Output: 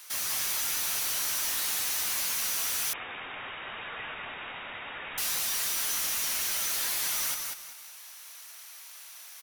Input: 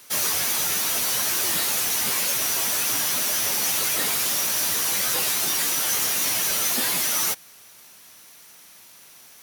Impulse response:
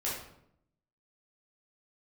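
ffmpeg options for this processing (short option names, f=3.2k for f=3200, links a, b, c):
-filter_complex "[0:a]highpass=880,asoftclip=type=tanh:threshold=-30dB,aecho=1:1:193|386|579|772:0.631|0.164|0.0427|0.0111,asettb=1/sr,asplit=3[a][b][c];[a]atrim=end=2.934[d];[b]atrim=start=2.93:end=5.18,asetpts=PTS-STARTPTS,afade=t=in:d=0.004:c=qsin,afade=t=out:st=2.246:d=0.004:c=qsin,lowpass=f=3.2k:t=q:w=0.5098,lowpass=f=3.2k:t=q:w=0.6013,lowpass=f=3.2k:t=q:w=0.9,lowpass=f=3.2k:t=q:w=2.563,afreqshift=-3800[e];[c]atrim=start=5.176[f];[d][e]acrossfade=d=0.004:c1=hsin:c2=qsin[g];[g][f]acrossfade=d=0.004:c1=qsin:c2=hsin"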